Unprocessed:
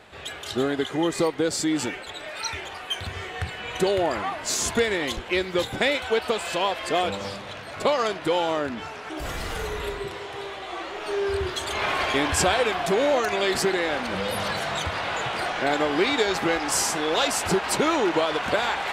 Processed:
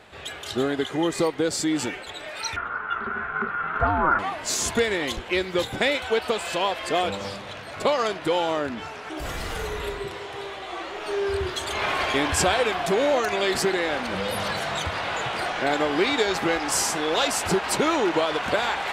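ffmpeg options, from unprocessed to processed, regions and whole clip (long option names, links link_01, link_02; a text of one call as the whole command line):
ffmpeg -i in.wav -filter_complex "[0:a]asettb=1/sr,asplit=3[link_01][link_02][link_03];[link_01]atrim=end=2.564[link_04];[link_02]atrim=start=2.56:end=4.19,asetpts=PTS-STARTPTS,afade=type=in:duration=0.004:curve=qsin,afade=type=out:start_time=1.626:duration=0.004:curve=qsin,aeval=exprs='val(0)*sin(2*PI*310*n/s)':channel_layout=same,lowpass=frequency=1400:width_type=q:width=13[link_05];[link_03]atrim=start=4.186[link_06];[link_04][link_05]acrossfade=duration=0.004:curve1=hsin:curve2=qsin[link_07];[link_07][link_06]acrossfade=duration=0.004:curve1=qsin:curve2=hsin" out.wav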